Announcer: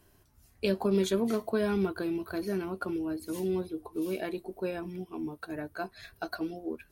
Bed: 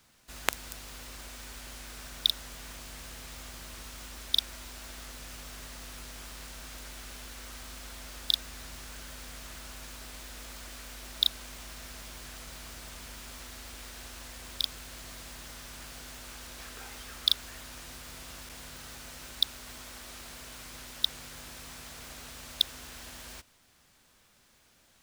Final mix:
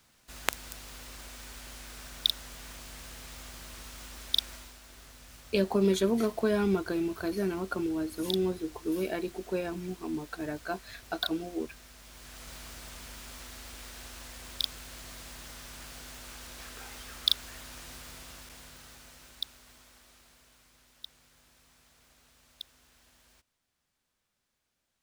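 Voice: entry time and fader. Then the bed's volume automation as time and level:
4.90 s, +1.5 dB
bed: 4.54 s -1 dB
4.8 s -8 dB
11.98 s -8 dB
12.5 s -0.5 dB
18.01 s -0.5 dB
20.77 s -17.5 dB

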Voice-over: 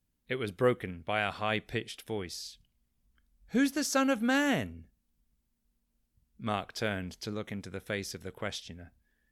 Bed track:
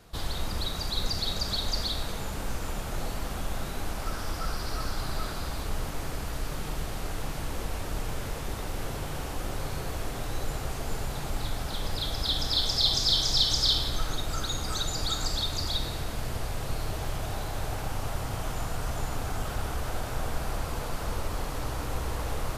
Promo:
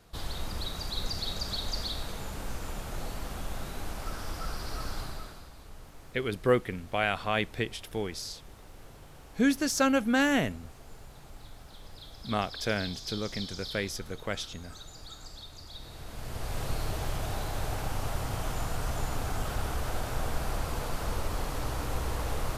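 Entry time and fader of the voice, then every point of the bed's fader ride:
5.85 s, +2.5 dB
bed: 4.99 s -4 dB
5.51 s -16.5 dB
15.69 s -16.5 dB
16.58 s -0.5 dB

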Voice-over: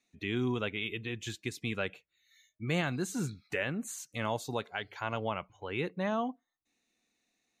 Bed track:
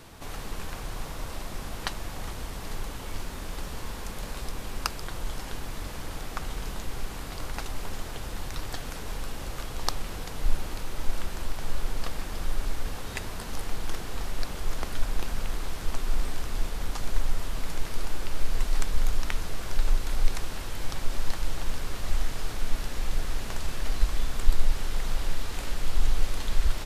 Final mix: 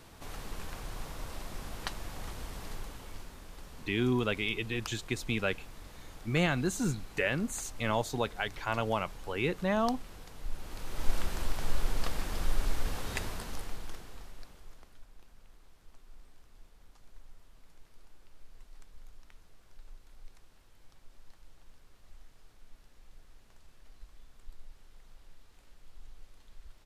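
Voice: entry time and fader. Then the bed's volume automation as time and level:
3.65 s, +3.0 dB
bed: 2.61 s -5.5 dB
3.44 s -13 dB
10.5 s -13 dB
11.1 s -1 dB
13.22 s -1 dB
15.07 s -27.5 dB

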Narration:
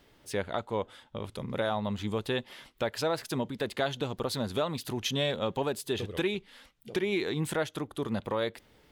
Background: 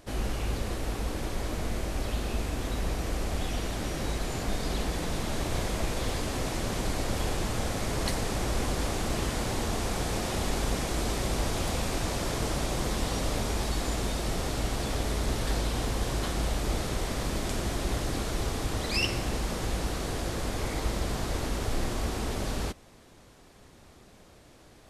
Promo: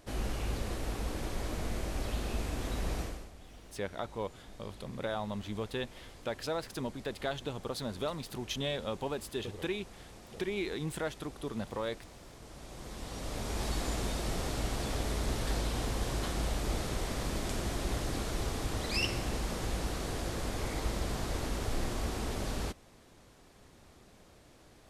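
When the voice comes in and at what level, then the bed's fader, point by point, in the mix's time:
3.45 s, -5.5 dB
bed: 3.01 s -4 dB
3.33 s -21.5 dB
12.41 s -21.5 dB
13.67 s -4 dB

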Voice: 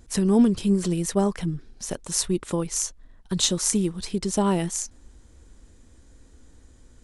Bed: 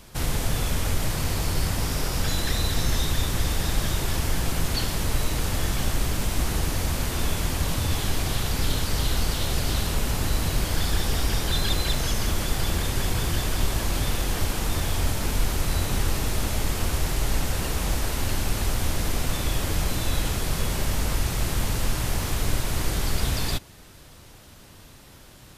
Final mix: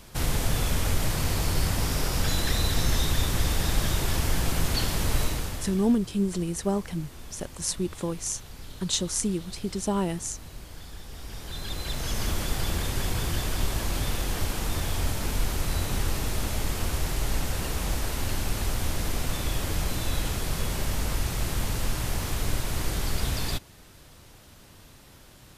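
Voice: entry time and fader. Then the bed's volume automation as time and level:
5.50 s, -4.5 dB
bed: 5.23 s -0.5 dB
5.99 s -18.5 dB
11.07 s -18.5 dB
12.22 s -3 dB

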